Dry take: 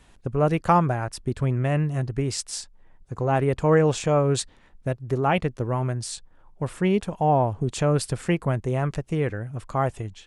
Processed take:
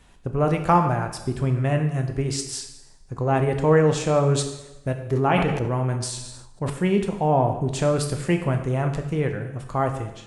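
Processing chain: on a send at -5 dB: reverb RT60 0.95 s, pre-delay 6 ms; 5.04–6.7 on the sum: sustainer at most 43 dB/s

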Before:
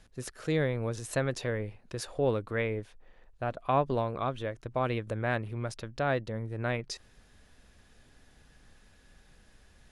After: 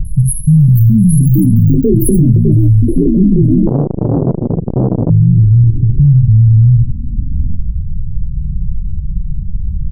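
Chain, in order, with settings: in parallel at -1.5 dB: upward compressor, threshold -34 dBFS; on the sum: dispersion highs, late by 50 ms, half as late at 530 Hz; on a send: early reflections 55 ms -8.5 dB, 77 ms -11.5 dB; on the sum: low-pass sweep 8600 Hz -> 290 Hz, 3.47–6.24; brick-wall FIR band-stop 190–10000 Hz; low shelf 150 Hz +7 dB; echoes that change speed 0.559 s, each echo +6 st, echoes 3; maximiser +25.5 dB; 3.67–5.1 core saturation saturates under 280 Hz; gain -1 dB

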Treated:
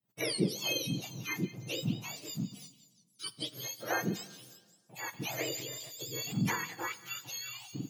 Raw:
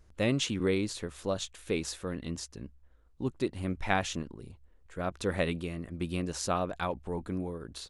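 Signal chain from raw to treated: spectrum mirrored in octaves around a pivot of 1100 Hz; expander -58 dBFS; delay with a stepping band-pass 0.178 s, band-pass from 3600 Hz, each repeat 0.7 oct, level -10 dB; plate-style reverb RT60 1.6 s, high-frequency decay 0.75×, DRR 16.5 dB; 5.1–6.56 transient shaper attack -1 dB, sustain +6 dB; gain -2 dB

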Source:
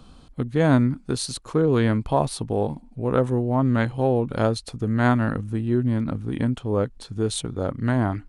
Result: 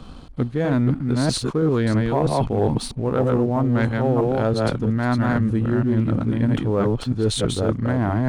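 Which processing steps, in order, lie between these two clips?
reverse delay 0.324 s, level -3 dB; LPF 4000 Hz 6 dB/oct; reverse; compressor, threshold -26 dBFS, peak gain reduction 14 dB; reverse; sample leveller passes 1; gain +6 dB

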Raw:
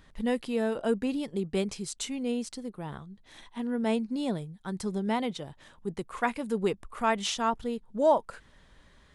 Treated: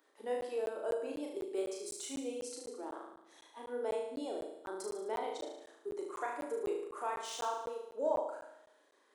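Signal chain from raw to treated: steep high-pass 310 Hz 48 dB/oct; spectral noise reduction 6 dB; de-esser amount 75%; bell 2900 Hz -9.5 dB 2.3 oct; compressor 2:1, threshold -42 dBFS, peak gain reduction 12.5 dB; flutter echo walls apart 6.3 m, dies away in 0.84 s; shoebox room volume 3500 m³, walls furnished, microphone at 0.46 m; crackling interface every 0.25 s, samples 512, zero, from 0.41

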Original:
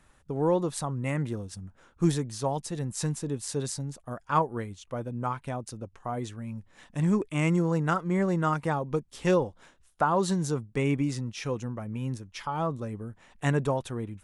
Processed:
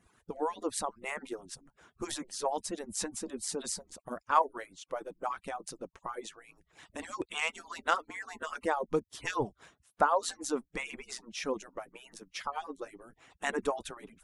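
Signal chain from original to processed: median-filter separation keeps percussive; 7.03–8.02 bell 3700 Hz +9.5 dB 0.87 oct

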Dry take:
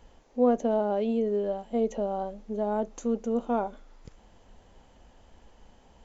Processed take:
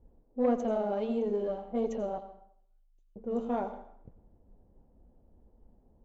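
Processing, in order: 2.18–3.16 inverse Chebyshev band-stop 100–630 Hz, stop band 80 dB; flange 1.6 Hz, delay 2.3 ms, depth 7.6 ms, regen -54%; added harmonics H 4 -22 dB, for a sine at -15 dBFS; low-pass opened by the level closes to 370 Hz, open at -27 dBFS; on a send: reverb RT60 0.70 s, pre-delay 77 ms, DRR 11.5 dB

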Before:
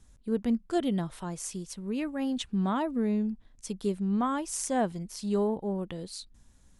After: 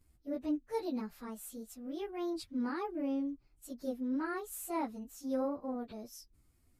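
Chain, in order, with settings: pitch shift by moving bins +4.5 st; gain -6 dB

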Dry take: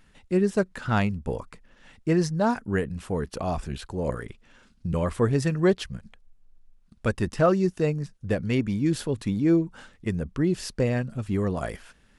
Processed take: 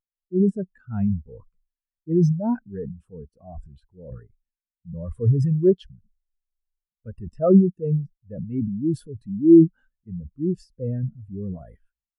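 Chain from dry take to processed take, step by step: high shelf 7200 Hz +9.5 dB; transient shaper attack -4 dB, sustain +10 dB; spectral expander 2.5:1; gain +5 dB

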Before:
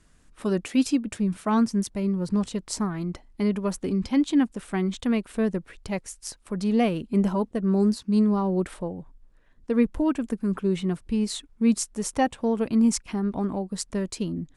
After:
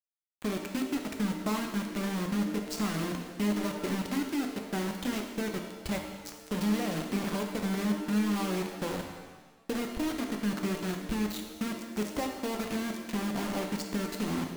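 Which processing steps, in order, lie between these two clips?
LPF 4500 Hz 12 dB/oct; compressor 8:1, threshold -31 dBFS, peak gain reduction 15 dB; requantised 6-bit, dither none; shimmer reverb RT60 1.2 s, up +7 st, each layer -8 dB, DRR 3 dB

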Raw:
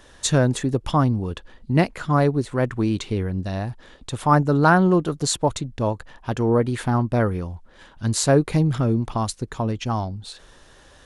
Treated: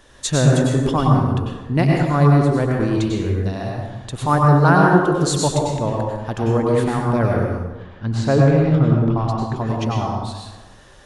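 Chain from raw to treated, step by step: 7.53–9.56 LPF 3000 Hz 12 dB/oct; reverb RT60 1.2 s, pre-delay 87 ms, DRR -2 dB; gain -1 dB

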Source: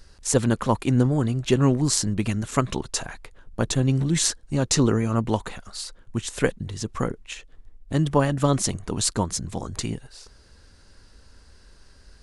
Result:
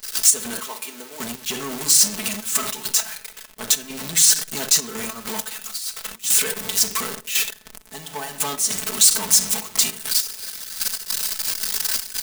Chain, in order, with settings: zero-crossing step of -24.5 dBFS; 0.53–1.2 Chebyshev high-pass 400 Hz, order 2; 7.93–8.6 bell 790 Hz +13 dB 0.23 oct; reverb RT60 0.70 s, pre-delay 5 ms, DRR 5 dB; 5.77–6.24 negative-ratio compressor -29 dBFS, ratio -1; step gate ".x.x....x.xxxxxx" 100 bpm -12 dB; limiter -13 dBFS, peak gain reduction 9.5 dB; comb 4.6 ms, depth 54%; sample leveller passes 2; tilt +4.5 dB/oct; gain -8.5 dB

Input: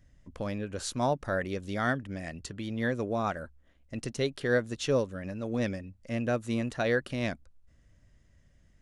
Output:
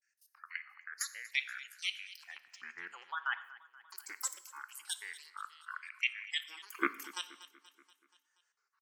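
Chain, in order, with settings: rattling part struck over -40 dBFS, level -32 dBFS; LFO high-pass square 0.23 Hz 810–2300 Hz; grains 0.155 s, grains 6.2/s, spray 0.1 s, pitch spread up and down by 12 st; RIAA curve recording; level quantiser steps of 17 dB; spectral gate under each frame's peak -20 dB strong; envelope phaser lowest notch 590 Hz, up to 2100 Hz, full sweep at -22.5 dBFS; on a send: feedback echo 0.239 s, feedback 57%, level -18 dB; on the sum: non-linear reverb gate 0.26 s falling, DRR 12 dB; noise-modulated level, depth 50%; gain +9.5 dB

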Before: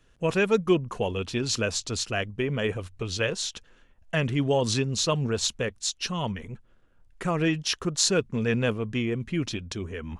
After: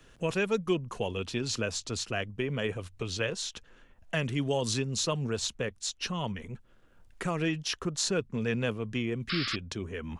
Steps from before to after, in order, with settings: 4.15–5.37 high shelf 6700 Hz +7.5 dB; 9.29–9.56 painted sound noise 1100–5400 Hz -29 dBFS; three-band squash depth 40%; gain -5 dB

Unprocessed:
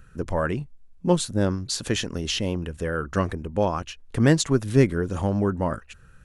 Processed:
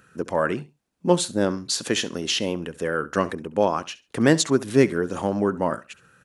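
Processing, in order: HPF 220 Hz 12 dB/oct; feedback echo 68 ms, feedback 22%, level -19 dB; gain +3 dB

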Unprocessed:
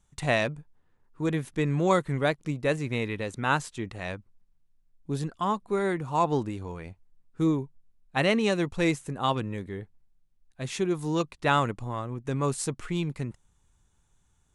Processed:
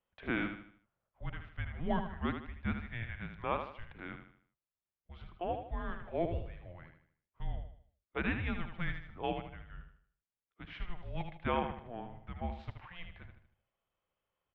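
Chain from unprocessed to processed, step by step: feedback echo 77 ms, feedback 40%, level -7.5 dB; mistuned SSB -350 Hz 300–3500 Hz; gain -9 dB

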